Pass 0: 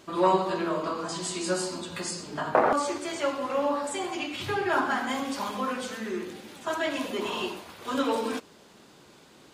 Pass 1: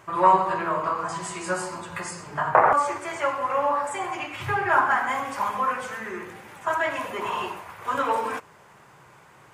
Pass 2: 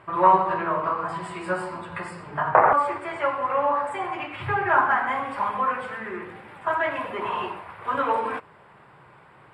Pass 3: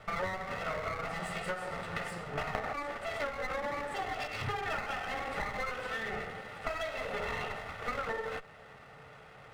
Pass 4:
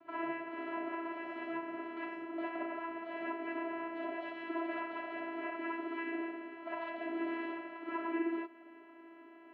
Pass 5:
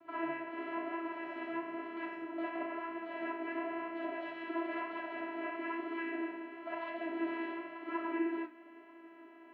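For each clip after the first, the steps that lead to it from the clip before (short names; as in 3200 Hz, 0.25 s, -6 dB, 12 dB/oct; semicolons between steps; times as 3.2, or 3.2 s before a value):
graphic EQ 125/250/1000/2000/4000 Hz +10/-11/+8/+7/-11 dB
running mean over 7 samples; gain +1 dB
minimum comb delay 1.5 ms; small resonant body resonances 440/1800 Hz, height 10 dB, ringing for 85 ms; compressor 20:1, threshold -32 dBFS, peak gain reduction 21.5 dB
vocoder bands 8, saw 332 Hz; air absorption 470 m; non-linear reverb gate 80 ms rising, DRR -5.5 dB; gain -3 dB
flange 1 Hz, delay 8.3 ms, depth 8.1 ms, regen +65%; gain +4.5 dB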